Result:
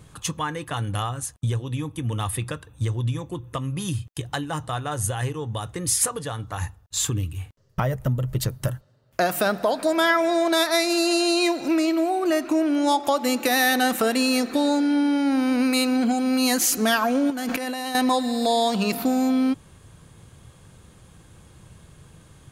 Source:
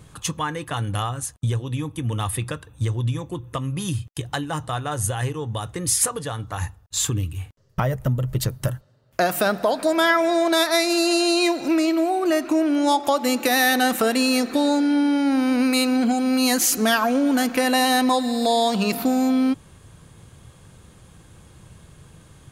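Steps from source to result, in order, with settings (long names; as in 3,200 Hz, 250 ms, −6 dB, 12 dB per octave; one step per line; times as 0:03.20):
0:17.30–0:17.95: compressor whose output falls as the input rises −27 dBFS, ratio −1
level −1.5 dB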